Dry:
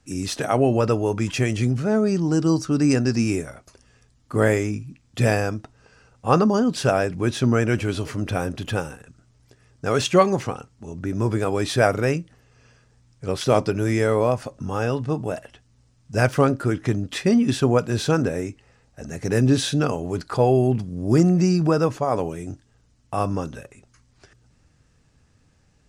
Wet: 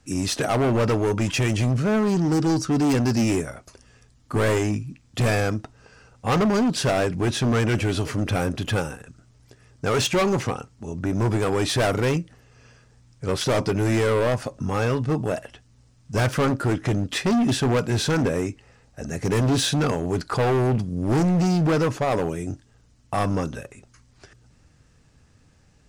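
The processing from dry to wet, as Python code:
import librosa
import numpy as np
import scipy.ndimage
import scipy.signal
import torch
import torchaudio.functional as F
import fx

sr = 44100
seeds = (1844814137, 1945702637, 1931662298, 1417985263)

y = np.clip(x, -10.0 ** (-20.5 / 20.0), 10.0 ** (-20.5 / 20.0))
y = y * librosa.db_to_amplitude(3.0)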